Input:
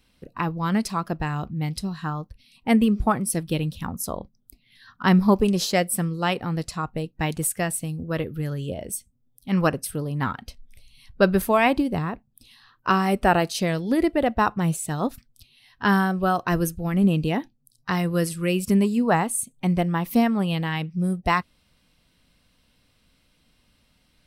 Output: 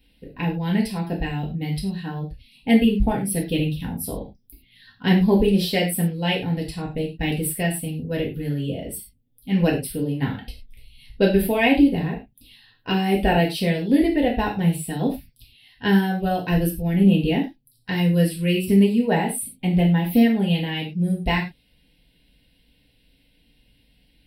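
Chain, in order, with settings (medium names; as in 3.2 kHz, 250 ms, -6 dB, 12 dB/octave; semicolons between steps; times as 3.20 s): static phaser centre 2.9 kHz, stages 4; gated-style reverb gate 130 ms falling, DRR -2 dB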